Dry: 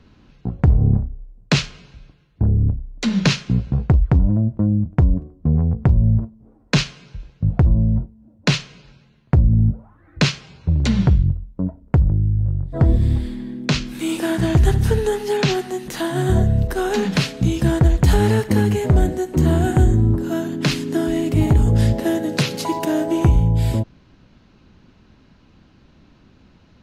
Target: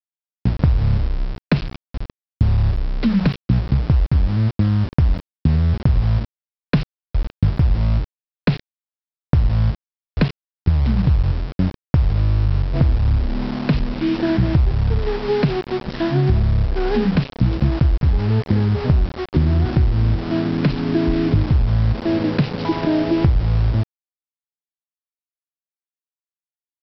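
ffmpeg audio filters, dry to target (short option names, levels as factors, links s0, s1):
-af "aemphasis=mode=reproduction:type=riaa,acompressor=threshold=0.251:ratio=10,aresample=11025,aeval=exprs='val(0)*gte(abs(val(0)),0.0668)':c=same,aresample=44100,volume=0.891"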